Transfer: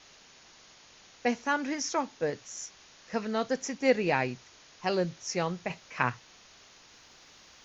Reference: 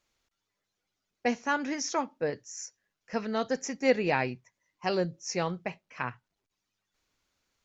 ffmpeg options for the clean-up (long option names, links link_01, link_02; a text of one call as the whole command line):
ffmpeg -i in.wav -af "afwtdn=0.0028,asetnsamples=nb_out_samples=441:pad=0,asendcmd='5.7 volume volume -6dB',volume=0dB" out.wav